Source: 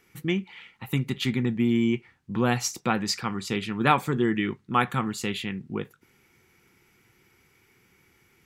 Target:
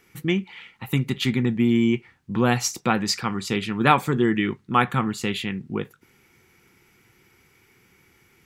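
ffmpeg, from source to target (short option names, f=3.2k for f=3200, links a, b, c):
-filter_complex "[0:a]asettb=1/sr,asplit=3[a][b][c];[a]atrim=end=4.804[d];[b]atrim=start=4.8:end=5.27,asetpts=PTS-STARTPTS,afade=t=in:d=0.004:c=qsin,afade=t=out:st=0.466:d=0.004:c=qsin,bass=f=250:g=1,treble=f=4k:g=-4[e];[c]atrim=start=5.266[f];[d][e]acrossfade=d=0.004:c1=hsin:c2=qsin[g];[g][f]acrossfade=d=0.004:c1=qsin:c2=hsin,volume=3.5dB"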